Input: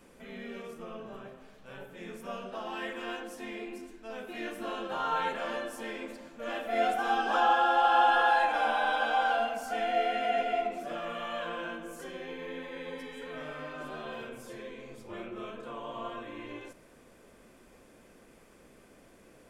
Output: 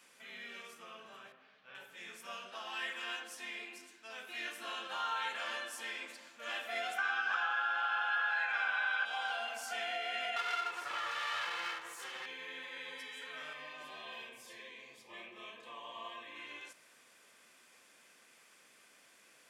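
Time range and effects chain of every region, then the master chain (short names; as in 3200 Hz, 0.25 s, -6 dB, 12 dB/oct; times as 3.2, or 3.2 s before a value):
1.32–1.75 air absorption 270 m + notch 940 Hz, Q 16
6.97–9.04 band shelf 1700 Hz +9 dB 1.3 oct + whine 1500 Hz -28 dBFS + BPF 150–6500 Hz
10.36–12.26 minimum comb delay 2.3 ms + bell 1100 Hz +7 dB 1.6 oct
13.53–16.36 Butterworth band-stop 1400 Hz, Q 3.5 + bell 8000 Hz -5 dB 1.5 oct
whole clip: weighting filter A; compressor, threshold -29 dBFS; passive tone stack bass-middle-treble 5-5-5; gain +9.5 dB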